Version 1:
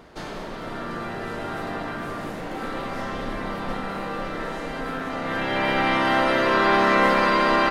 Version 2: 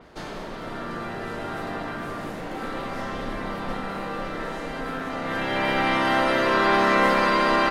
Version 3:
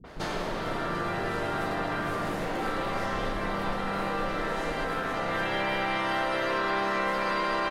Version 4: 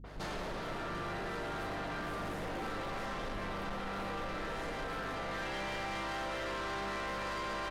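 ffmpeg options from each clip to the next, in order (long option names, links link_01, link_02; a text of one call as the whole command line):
ffmpeg -i in.wav -af "adynamicequalizer=threshold=0.0126:dfrequency=5300:dqfactor=0.7:tfrequency=5300:tqfactor=0.7:attack=5:release=100:ratio=0.375:range=1.5:mode=boostabove:tftype=highshelf,volume=-1dB" out.wav
ffmpeg -i in.wav -filter_complex "[0:a]acompressor=threshold=-30dB:ratio=6,acrossover=split=240[link_01][link_02];[link_02]adelay=40[link_03];[link_01][link_03]amix=inputs=2:normalize=0,volume=4.5dB" out.wav
ffmpeg -i in.wav -af "asoftclip=type=tanh:threshold=-31.5dB,aeval=exprs='val(0)+0.00501*(sin(2*PI*50*n/s)+sin(2*PI*2*50*n/s)/2+sin(2*PI*3*50*n/s)/3+sin(2*PI*4*50*n/s)/4+sin(2*PI*5*50*n/s)/5)':channel_layout=same,volume=-4dB" out.wav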